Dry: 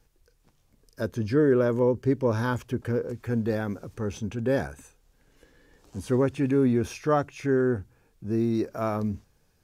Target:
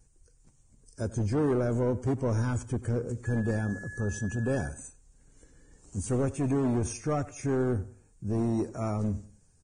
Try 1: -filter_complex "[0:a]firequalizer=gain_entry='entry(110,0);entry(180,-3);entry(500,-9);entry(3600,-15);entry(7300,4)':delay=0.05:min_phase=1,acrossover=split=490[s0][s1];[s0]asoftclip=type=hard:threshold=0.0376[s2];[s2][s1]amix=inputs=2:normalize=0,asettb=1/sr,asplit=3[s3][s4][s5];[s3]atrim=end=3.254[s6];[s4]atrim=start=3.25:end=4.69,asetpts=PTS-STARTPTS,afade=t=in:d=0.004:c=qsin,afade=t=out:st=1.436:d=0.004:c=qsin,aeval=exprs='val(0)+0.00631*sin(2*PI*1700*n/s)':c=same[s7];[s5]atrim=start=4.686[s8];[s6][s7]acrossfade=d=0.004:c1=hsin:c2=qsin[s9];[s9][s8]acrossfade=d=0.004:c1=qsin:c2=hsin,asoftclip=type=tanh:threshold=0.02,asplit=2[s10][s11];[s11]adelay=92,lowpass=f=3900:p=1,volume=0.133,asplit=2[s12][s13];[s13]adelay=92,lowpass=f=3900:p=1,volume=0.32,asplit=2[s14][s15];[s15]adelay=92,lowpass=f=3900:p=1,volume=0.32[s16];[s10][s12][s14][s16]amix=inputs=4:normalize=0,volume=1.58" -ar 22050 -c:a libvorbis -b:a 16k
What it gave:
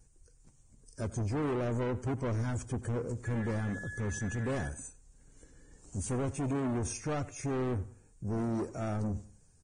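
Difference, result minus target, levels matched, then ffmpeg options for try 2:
saturation: distortion +13 dB
-filter_complex "[0:a]firequalizer=gain_entry='entry(110,0);entry(180,-3);entry(500,-9);entry(3600,-15);entry(7300,4)':delay=0.05:min_phase=1,acrossover=split=490[s0][s1];[s0]asoftclip=type=hard:threshold=0.0376[s2];[s2][s1]amix=inputs=2:normalize=0,asettb=1/sr,asplit=3[s3][s4][s5];[s3]atrim=end=3.254[s6];[s4]atrim=start=3.25:end=4.69,asetpts=PTS-STARTPTS,afade=t=in:d=0.004:c=qsin,afade=t=out:st=1.436:d=0.004:c=qsin,aeval=exprs='val(0)+0.00631*sin(2*PI*1700*n/s)':c=same[s7];[s5]atrim=start=4.686[s8];[s6][s7]acrossfade=d=0.004:c1=hsin:c2=qsin[s9];[s9][s8]acrossfade=d=0.004:c1=qsin:c2=hsin,asoftclip=type=tanh:threshold=0.0708,asplit=2[s10][s11];[s11]adelay=92,lowpass=f=3900:p=1,volume=0.133,asplit=2[s12][s13];[s13]adelay=92,lowpass=f=3900:p=1,volume=0.32,asplit=2[s14][s15];[s15]adelay=92,lowpass=f=3900:p=1,volume=0.32[s16];[s10][s12][s14][s16]amix=inputs=4:normalize=0,volume=1.58" -ar 22050 -c:a libvorbis -b:a 16k

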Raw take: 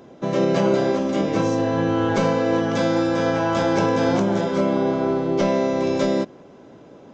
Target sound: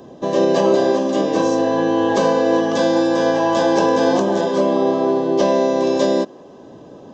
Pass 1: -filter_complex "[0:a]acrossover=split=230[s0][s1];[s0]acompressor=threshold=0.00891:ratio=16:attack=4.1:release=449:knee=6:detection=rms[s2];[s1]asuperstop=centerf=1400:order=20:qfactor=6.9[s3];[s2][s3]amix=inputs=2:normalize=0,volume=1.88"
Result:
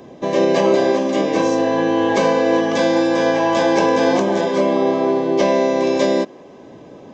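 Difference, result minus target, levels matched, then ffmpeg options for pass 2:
2 kHz band +3.0 dB
-filter_complex "[0:a]acrossover=split=230[s0][s1];[s0]acompressor=threshold=0.00891:ratio=16:attack=4.1:release=449:knee=6:detection=rms[s2];[s1]asuperstop=centerf=1400:order=20:qfactor=6.9,equalizer=f=2200:w=4.1:g=-13.5[s3];[s2][s3]amix=inputs=2:normalize=0,volume=1.88"

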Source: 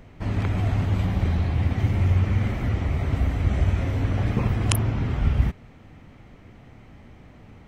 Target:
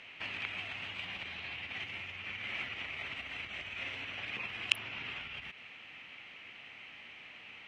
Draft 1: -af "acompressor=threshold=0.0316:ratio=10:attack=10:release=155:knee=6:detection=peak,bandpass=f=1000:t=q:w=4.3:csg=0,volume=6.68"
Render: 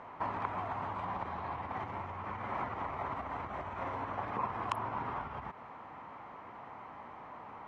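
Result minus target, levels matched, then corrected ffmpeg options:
1 kHz band +16.0 dB
-af "acompressor=threshold=0.0316:ratio=10:attack=10:release=155:knee=6:detection=peak,bandpass=f=2700:t=q:w=4.3:csg=0,volume=6.68"

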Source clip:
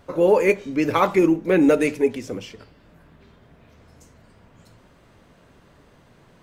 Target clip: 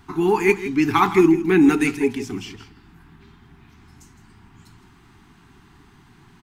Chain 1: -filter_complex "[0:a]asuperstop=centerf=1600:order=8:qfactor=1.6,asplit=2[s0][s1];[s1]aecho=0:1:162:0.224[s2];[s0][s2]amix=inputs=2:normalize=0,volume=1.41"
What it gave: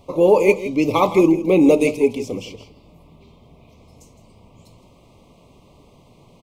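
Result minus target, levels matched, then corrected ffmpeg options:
2 kHz band -5.0 dB
-filter_complex "[0:a]asuperstop=centerf=550:order=8:qfactor=1.6,asplit=2[s0][s1];[s1]aecho=0:1:162:0.224[s2];[s0][s2]amix=inputs=2:normalize=0,volume=1.41"

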